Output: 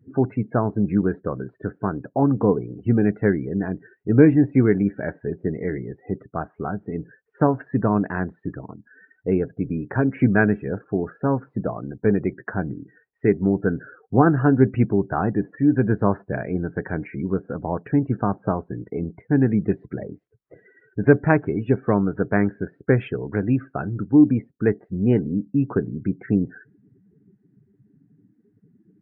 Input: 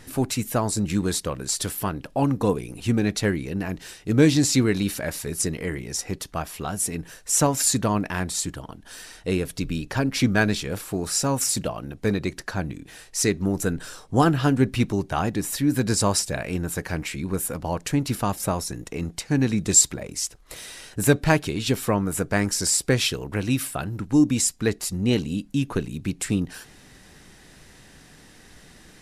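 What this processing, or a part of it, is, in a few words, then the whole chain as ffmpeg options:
bass cabinet: -af "highpass=80,equalizer=frequency=120:width_type=q:width=4:gain=6,equalizer=frequency=200:width_type=q:width=4:gain=5,equalizer=frequency=290:width_type=q:width=4:gain=4,equalizer=frequency=410:width_type=q:width=4:gain=7,equalizer=frequency=720:width_type=q:width=4:gain=3,equalizer=frequency=1500:width_type=q:width=4:gain=4,lowpass=frequency=2100:width=0.5412,lowpass=frequency=2100:width=1.3066,afftdn=noise_reduction=34:noise_floor=-36,lowpass=3700,volume=-1dB"

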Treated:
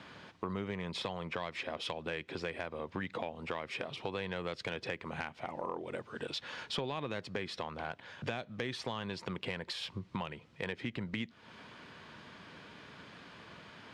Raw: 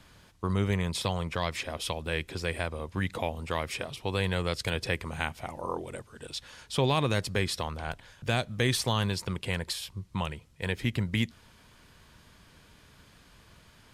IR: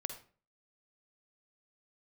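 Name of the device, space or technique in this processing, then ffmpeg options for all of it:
AM radio: -af "highpass=180,lowpass=3400,acompressor=threshold=-43dB:ratio=5,asoftclip=type=tanh:threshold=-30dB,volume=7.5dB"

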